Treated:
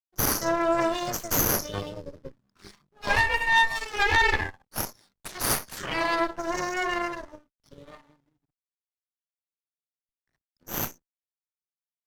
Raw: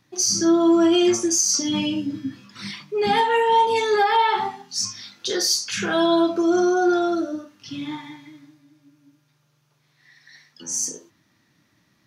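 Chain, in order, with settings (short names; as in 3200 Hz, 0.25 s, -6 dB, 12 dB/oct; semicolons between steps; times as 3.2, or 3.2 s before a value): fixed phaser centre 1100 Hz, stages 4; backlash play -42.5 dBFS; added harmonics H 3 -8 dB, 4 -7 dB, 5 -19 dB, 7 -29 dB, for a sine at -11 dBFS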